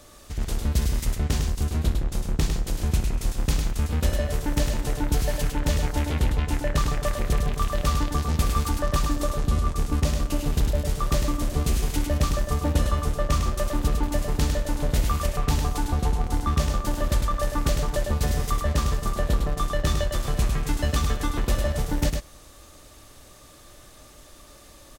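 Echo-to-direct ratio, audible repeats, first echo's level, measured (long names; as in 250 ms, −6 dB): −5.0 dB, 2, −18.0 dB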